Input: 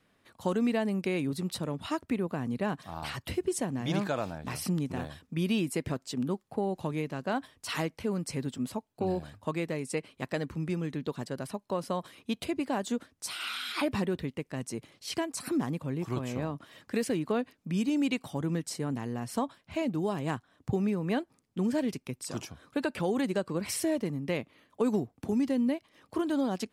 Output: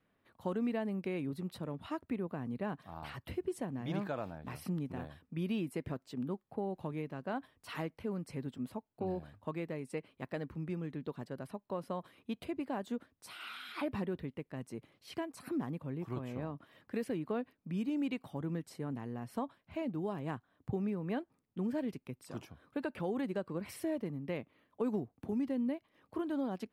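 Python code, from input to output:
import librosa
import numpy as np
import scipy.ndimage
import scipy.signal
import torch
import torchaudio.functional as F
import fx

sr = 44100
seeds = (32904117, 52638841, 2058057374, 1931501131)

y = fx.peak_eq(x, sr, hz=6900.0, db=-13.0, octaves=1.7)
y = y * 10.0 ** (-6.5 / 20.0)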